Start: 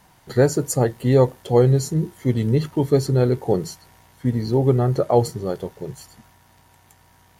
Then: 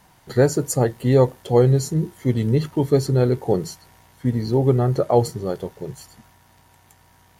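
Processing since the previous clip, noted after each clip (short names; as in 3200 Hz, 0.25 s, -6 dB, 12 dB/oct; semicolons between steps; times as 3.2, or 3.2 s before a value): nothing audible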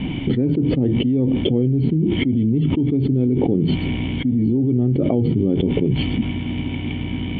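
dynamic EQ 2500 Hz, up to -4 dB, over -43 dBFS, Q 1; vocal tract filter i; fast leveller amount 100%; gain +3 dB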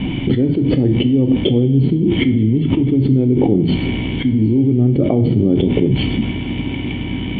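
two-slope reverb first 0.48 s, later 4.6 s, from -18 dB, DRR 8 dB; gain +3.5 dB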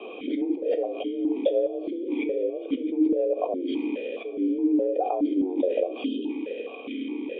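spectral delete 6.05–6.3, 760–2300 Hz; frequency shift +180 Hz; vowel sequencer 4.8 Hz; gain -2 dB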